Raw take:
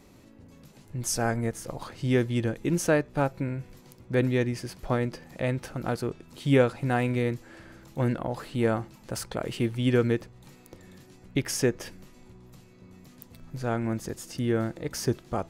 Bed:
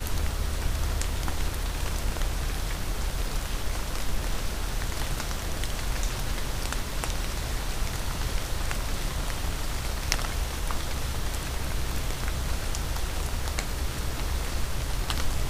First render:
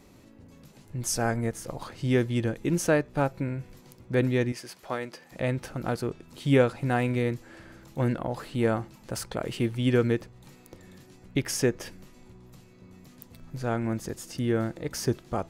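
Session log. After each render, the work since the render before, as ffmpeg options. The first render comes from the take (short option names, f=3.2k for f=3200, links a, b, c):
-filter_complex "[0:a]asettb=1/sr,asplit=3[a][b][c];[a]atrim=end=4.524[d];[b]atrim=start=4.52:end=5.32,asetpts=PTS-STARTPTS,afade=t=in:d=0.004:c=qsin,afade=t=out:st=0.796:d=0.004:c=qsin,highpass=f=700:p=1[e];[c]atrim=start=5.316[f];[d][e]acrossfade=d=0.004:c1=hsin:c2=qsin[g];[g][f]acrossfade=d=0.004:c1=qsin:c2=hsin"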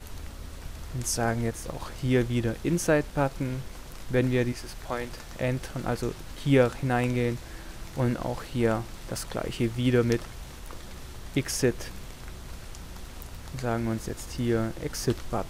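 -filter_complex "[1:a]volume=-12dB[a];[0:a][a]amix=inputs=2:normalize=0"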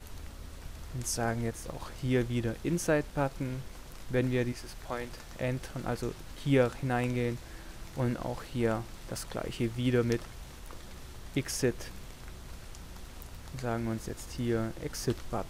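-af "volume=-4.5dB"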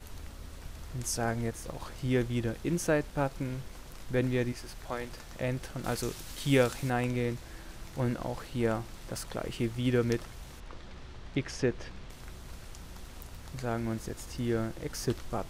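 -filter_complex "[0:a]asettb=1/sr,asplit=3[a][b][c];[a]atrim=end=5.844[d];[b]atrim=start=5.84:end=6.9,asetpts=PTS-STARTPTS,afade=t=in:d=0.004:c=qsin,afade=t=out:st=1.056:d=0.004:c=qsin,highshelf=f=3k:g=11[e];[c]atrim=start=6.896[f];[d][e]acrossfade=d=0.004:c1=hsin:c2=qsin[g];[g][f]acrossfade=d=0.004:c1=qsin:c2=hsin,asettb=1/sr,asplit=3[h][i][j];[h]atrim=end=10.604[k];[i]atrim=start=10.6:end=12.1,asetpts=PTS-STARTPTS,afade=t=in:d=0.004:c=qsin,afade=t=out:st=1.496:d=0.004:c=qsin,lowpass=4.5k[l];[j]atrim=start=12.096[m];[k][l]acrossfade=d=0.004:c1=hsin:c2=qsin[n];[n][m]acrossfade=d=0.004:c1=qsin:c2=hsin"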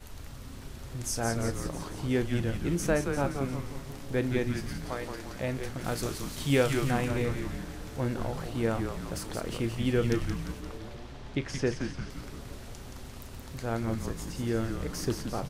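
-filter_complex "[0:a]asplit=2[a][b];[b]adelay=35,volume=-13dB[c];[a][c]amix=inputs=2:normalize=0,asplit=9[d][e][f][g][h][i][j][k][l];[e]adelay=174,afreqshift=-140,volume=-5.5dB[m];[f]adelay=348,afreqshift=-280,volume=-10.2dB[n];[g]adelay=522,afreqshift=-420,volume=-15dB[o];[h]adelay=696,afreqshift=-560,volume=-19.7dB[p];[i]adelay=870,afreqshift=-700,volume=-24.4dB[q];[j]adelay=1044,afreqshift=-840,volume=-29.2dB[r];[k]adelay=1218,afreqshift=-980,volume=-33.9dB[s];[l]adelay=1392,afreqshift=-1120,volume=-38.6dB[t];[d][m][n][o][p][q][r][s][t]amix=inputs=9:normalize=0"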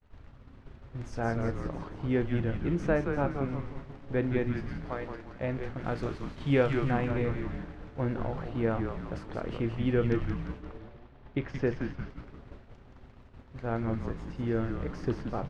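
-af "lowpass=2.2k,agate=range=-33dB:threshold=-35dB:ratio=3:detection=peak"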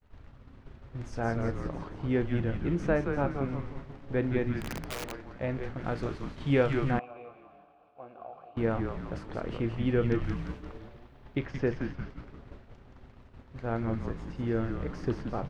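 -filter_complex "[0:a]asettb=1/sr,asplit=3[a][b][c];[a]atrim=end=4.614[d];[b]atrim=start=4.61:end=5.12,asetpts=PTS-STARTPTS,afade=t=in:d=0.004:c=qsin,afade=t=out:st=0.506:d=0.004:c=qsin,aeval=exprs='(mod(31.6*val(0)+1,2)-1)/31.6':c=same[e];[c]atrim=start=5.116[f];[d][e]acrossfade=d=0.004:c1=hsin:c2=qsin[g];[g][f]acrossfade=d=0.004:c1=qsin:c2=hsin,asettb=1/sr,asplit=3[h][i][j];[h]atrim=end=6.994[k];[i]atrim=start=6.99:end=8.57,asetpts=PTS-STARTPTS,afade=t=in:d=0.004:c=qsin,afade=t=out:st=1.576:d=0.004:c=qsin,asplit=3[l][m][n];[l]bandpass=f=730:t=q:w=8,volume=0dB[o];[m]bandpass=f=1.09k:t=q:w=8,volume=-6dB[p];[n]bandpass=f=2.44k:t=q:w=8,volume=-9dB[q];[o][p][q]amix=inputs=3:normalize=0[r];[j]atrim=start=8.566[s];[k][r]acrossfade=d=0.004:c1=hsin:c2=qsin[t];[t][s]acrossfade=d=0.004:c1=qsin:c2=hsin,asettb=1/sr,asplit=3[u][v][w];[u]atrim=end=10.244[x];[v]atrim=start=10.24:end=11.46,asetpts=PTS-STARTPTS,afade=t=in:d=0.004:c=qsin,afade=t=out:st=1.216:d=0.004:c=qsin,highshelf=f=4.7k:g=8.5[y];[w]atrim=start=11.456[z];[x][y]acrossfade=d=0.004:c1=hsin:c2=qsin[aa];[aa][z]acrossfade=d=0.004:c1=qsin:c2=hsin"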